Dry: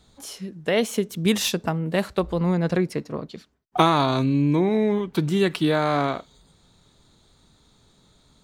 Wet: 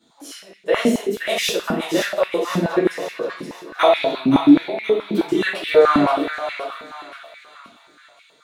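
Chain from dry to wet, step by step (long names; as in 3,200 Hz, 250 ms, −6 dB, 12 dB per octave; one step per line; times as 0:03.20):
0:03.83–0:05.12: phaser with its sweep stopped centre 2,800 Hz, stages 4
on a send: feedback echo with a high-pass in the loop 523 ms, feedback 51%, high-pass 1,000 Hz, level −5 dB
on the sum: rectangular room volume 120 cubic metres, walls mixed, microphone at 2.6 metres
high-pass on a step sequencer 9.4 Hz 240–2,200 Hz
level −9.5 dB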